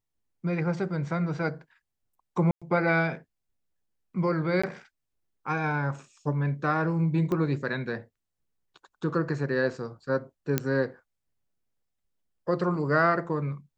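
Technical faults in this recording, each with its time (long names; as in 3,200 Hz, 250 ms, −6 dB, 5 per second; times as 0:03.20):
0:02.51–0:02.62: drop-out 106 ms
0:04.62–0:04.63: drop-out 15 ms
0:07.32: click −19 dBFS
0:10.58: click −10 dBFS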